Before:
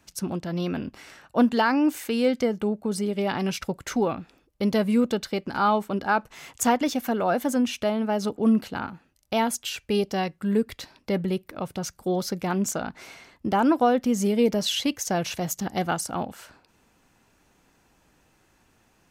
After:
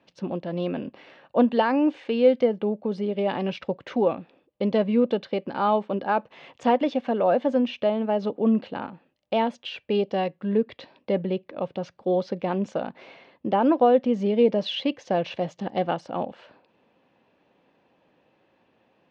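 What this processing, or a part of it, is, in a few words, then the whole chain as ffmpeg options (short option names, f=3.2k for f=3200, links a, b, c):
kitchen radio: -af "highpass=170,equalizer=f=540:t=q:w=4:g=8,equalizer=f=1.4k:t=q:w=4:g=-8,equalizer=f=2.1k:t=q:w=4:g=-4,lowpass=f=3.4k:w=0.5412,lowpass=f=3.4k:w=1.3066"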